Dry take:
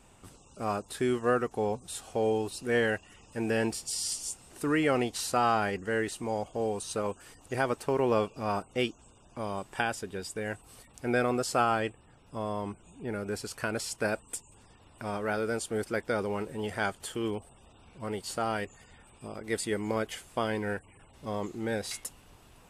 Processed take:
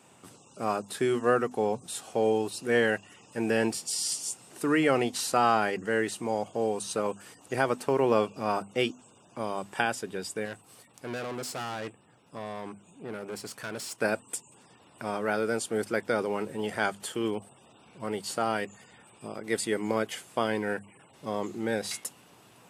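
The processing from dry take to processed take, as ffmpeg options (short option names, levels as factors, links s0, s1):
-filter_complex "[0:a]asettb=1/sr,asplit=3[s0][s1][s2];[s0]atrim=end=10.454[s3];[s1]atrim=start=10.45:end=14.01,asetpts=PTS-STARTPTS,afade=t=in:d=0.004:c=qsin,afade=t=out:st=3.556:d=0.004:c=qsin,aeval=exprs='(tanh(56.2*val(0)+0.6)-tanh(0.6))/56.2':c=same[s4];[s2]atrim=start=14.006[s5];[s3][s4]acrossfade=d=0.004:c1=hsin:c2=qsin[s6];[s6][s5]acrossfade=d=0.004:c1=qsin:c2=hsin,highpass=f=120:w=0.5412,highpass=f=120:w=1.3066,bandreject=f=50:t=h:w=6,bandreject=f=100:t=h:w=6,bandreject=f=150:t=h:w=6,bandreject=f=200:t=h:w=6,bandreject=f=250:t=h:w=6,volume=1.33"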